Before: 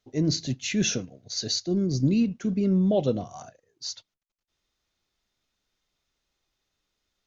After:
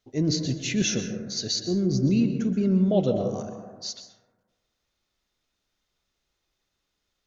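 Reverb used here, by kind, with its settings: plate-style reverb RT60 1.4 s, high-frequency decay 0.25×, pre-delay 110 ms, DRR 6 dB

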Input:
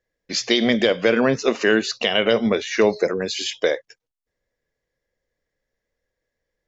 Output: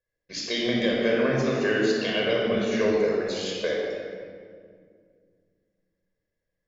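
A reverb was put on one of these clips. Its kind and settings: simulated room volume 3900 m³, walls mixed, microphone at 5.4 m; trim -13 dB

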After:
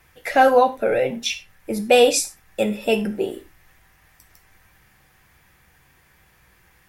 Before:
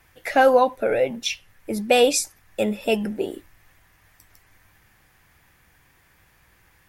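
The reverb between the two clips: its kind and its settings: gated-style reverb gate 130 ms falling, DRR 7.5 dB; trim +1 dB

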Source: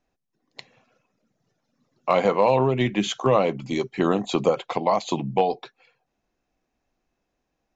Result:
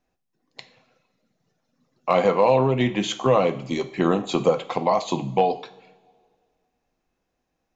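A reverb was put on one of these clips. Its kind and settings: two-slope reverb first 0.48 s, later 2 s, from -18 dB, DRR 9 dB

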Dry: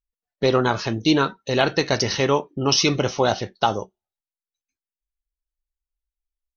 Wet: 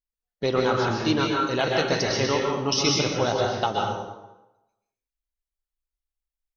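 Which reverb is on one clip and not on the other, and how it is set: plate-style reverb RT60 0.97 s, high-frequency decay 0.75×, pre-delay 110 ms, DRR -1.5 dB; trim -6 dB

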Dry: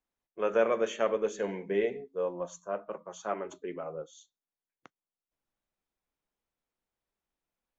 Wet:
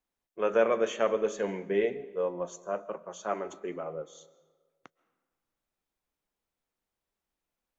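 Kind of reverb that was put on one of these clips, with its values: algorithmic reverb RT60 1.5 s, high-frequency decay 0.7×, pre-delay 95 ms, DRR 19 dB; trim +1.5 dB

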